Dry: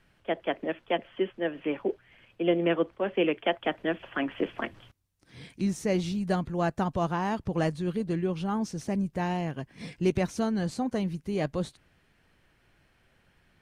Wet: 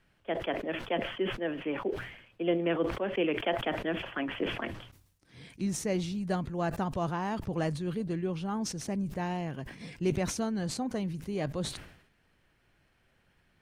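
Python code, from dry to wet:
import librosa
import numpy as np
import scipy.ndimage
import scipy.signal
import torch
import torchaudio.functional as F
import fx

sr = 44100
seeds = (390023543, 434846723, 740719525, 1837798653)

y = fx.sustainer(x, sr, db_per_s=79.0)
y = F.gain(torch.from_numpy(y), -4.0).numpy()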